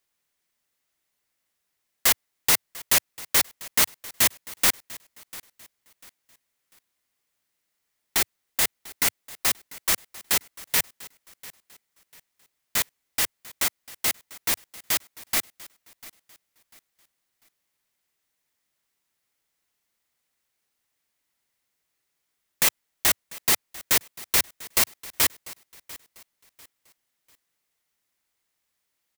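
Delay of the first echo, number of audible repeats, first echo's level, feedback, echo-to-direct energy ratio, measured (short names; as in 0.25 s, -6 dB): 0.695 s, 2, -20.0 dB, 32%, -19.5 dB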